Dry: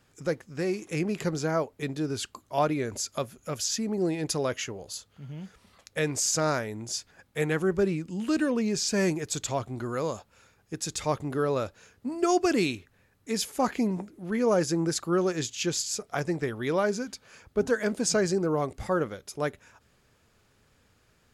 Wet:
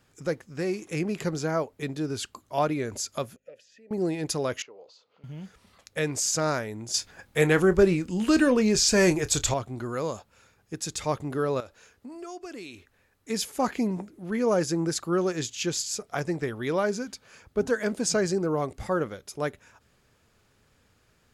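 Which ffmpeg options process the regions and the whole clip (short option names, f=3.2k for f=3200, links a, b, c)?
-filter_complex "[0:a]asettb=1/sr,asplit=3[a][b][c];[a]atrim=end=3.364[d];[b]atrim=start=3.36:end=3.91,asetpts=PTS-STARTPTS,afade=t=in:d=0.004:c=qsin,afade=t=out:st=0.546:d=0.004:c=qsin,aeval=exprs='val(0)+0.00251*(sin(2*PI*50*n/s)+sin(2*PI*2*50*n/s)/2+sin(2*PI*3*50*n/s)/3+sin(2*PI*4*50*n/s)/4+sin(2*PI*5*50*n/s)/5)':c=same,acompressor=threshold=-34dB:ratio=3:attack=3.2:release=140:knee=1:detection=peak,asplit=3[e][f][g];[e]bandpass=f=530:t=q:w=8,volume=0dB[h];[f]bandpass=f=1.84k:t=q:w=8,volume=-6dB[i];[g]bandpass=f=2.48k:t=q:w=8,volume=-9dB[j];[h][i][j]amix=inputs=3:normalize=0[k];[c]atrim=start=3.906[l];[d][k]acrossfade=d=0.004:c1=hsin:c2=qsin[m];[m][l]acrossfade=d=0.004:c1=qsin:c2=hsin,asettb=1/sr,asplit=3[n][o][p];[n]atrim=end=4.624[q];[o]atrim=start=4.62:end=5.24,asetpts=PTS-STARTPTS,afade=t=in:d=0.004:c=qsin,afade=t=out:st=0.616:d=0.004:c=qsin,acompressor=threshold=-52dB:ratio=2:attack=3.2:release=140:knee=1:detection=peak,highpass=420,equalizer=f=480:t=q:w=4:g=8,equalizer=f=1k:t=q:w=4:g=3,equalizer=f=1.7k:t=q:w=4:g=-9,equalizer=f=3.3k:t=q:w=4:g=-6,lowpass=f=4.4k:w=0.5412,lowpass=f=4.4k:w=1.3066[r];[p]atrim=start=5.236[s];[q][r]acrossfade=d=0.004:c1=hsin:c2=qsin[t];[t][s]acrossfade=d=0.004:c1=qsin:c2=hsin,asettb=1/sr,asplit=3[u][v][w];[u]atrim=end=6.944[x];[v]atrim=start=6.94:end=9.54,asetpts=PTS-STARTPTS,afade=t=in:d=0.004:c=qsin,afade=t=out:st=2.596:d=0.004:c=qsin,asubboost=boost=10:cutoff=65,acontrast=76,asplit=2[y][z];[z]adelay=28,volume=-14dB[aa];[y][aa]amix=inputs=2:normalize=0,atrim=end_sample=114660[ab];[w]atrim=start=9.536[ac];[x][ab]acrossfade=d=0.004:c1=hsin:c2=qsin[ad];[ad][ac]acrossfade=d=0.004:c1=qsin:c2=hsin,asettb=1/sr,asplit=3[ae][af][ag];[ae]atrim=end=11.604[ah];[af]atrim=start=11.6:end=13.3,asetpts=PTS-STARTPTS,afade=t=in:d=0.004:c=qsin,afade=t=out:st=1.696:d=0.004:c=qsin,equalizer=f=140:w=0.89:g=-8,acompressor=threshold=-39dB:ratio=4:attack=3.2:release=140:knee=1:detection=peak[ai];[ag]atrim=start=13.296[aj];[ah][ai]acrossfade=d=0.004:c1=hsin:c2=qsin[ak];[ak][aj]acrossfade=d=0.004:c1=qsin:c2=hsin"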